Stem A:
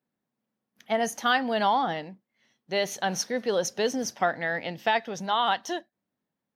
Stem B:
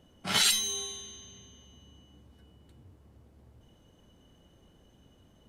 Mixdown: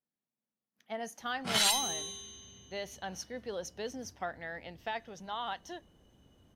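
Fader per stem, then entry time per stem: -13.0, -3.0 dB; 0.00, 1.20 s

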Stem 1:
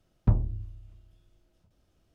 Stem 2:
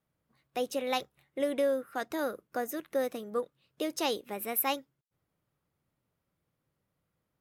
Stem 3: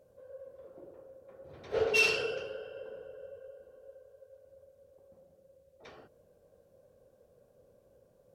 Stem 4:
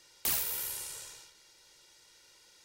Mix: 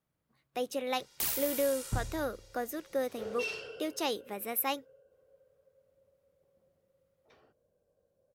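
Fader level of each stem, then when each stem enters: -12.0, -2.0, -11.5, -2.0 dB; 1.65, 0.00, 1.45, 0.95 s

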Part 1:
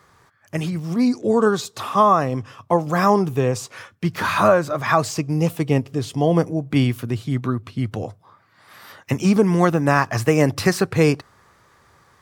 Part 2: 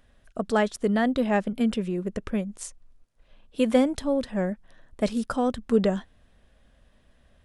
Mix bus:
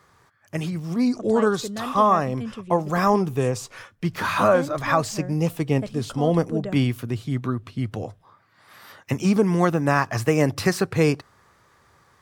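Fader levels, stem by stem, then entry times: -3.0, -9.0 dB; 0.00, 0.80 s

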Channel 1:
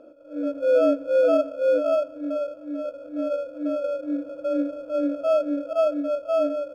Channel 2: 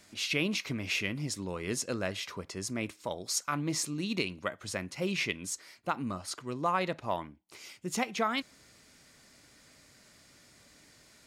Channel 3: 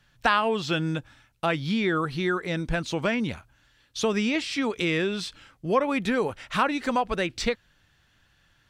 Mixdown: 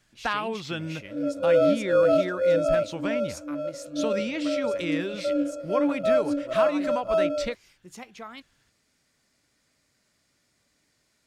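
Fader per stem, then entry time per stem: -1.0, -11.0, -6.0 dB; 0.80, 0.00, 0.00 s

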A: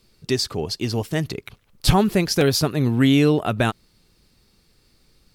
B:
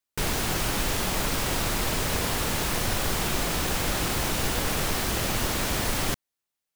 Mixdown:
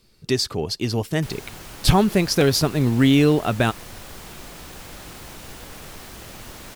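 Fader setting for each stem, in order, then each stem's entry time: +0.5, -12.5 dB; 0.00, 1.05 s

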